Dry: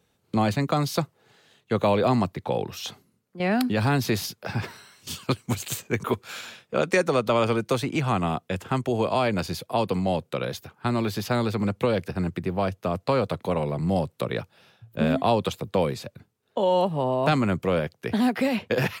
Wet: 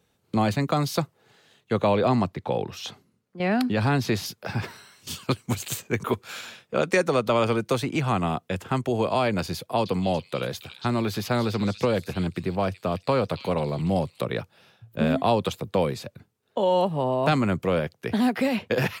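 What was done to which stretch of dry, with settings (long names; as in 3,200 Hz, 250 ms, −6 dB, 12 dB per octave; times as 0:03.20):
0:01.78–0:04.26: high-shelf EQ 10,000 Hz −11.5 dB
0:09.57–0:14.20: echo through a band-pass that steps 285 ms, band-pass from 3,600 Hz, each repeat 0.7 octaves, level −3.5 dB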